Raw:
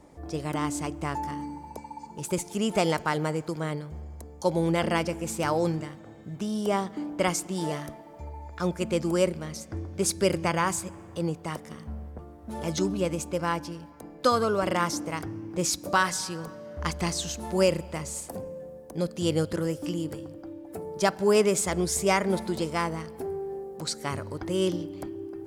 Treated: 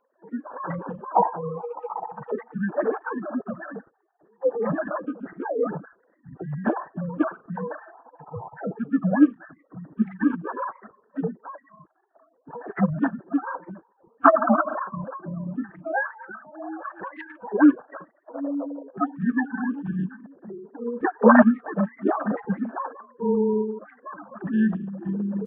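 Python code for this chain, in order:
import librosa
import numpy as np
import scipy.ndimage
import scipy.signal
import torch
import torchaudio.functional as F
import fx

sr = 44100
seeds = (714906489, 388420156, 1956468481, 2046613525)

y = fx.sine_speech(x, sr)
y = fx.noise_reduce_blind(y, sr, reduce_db=13)
y = fx.pitch_keep_formants(y, sr, semitones=-10.5)
y = y * 10.0 ** (5.0 / 20.0)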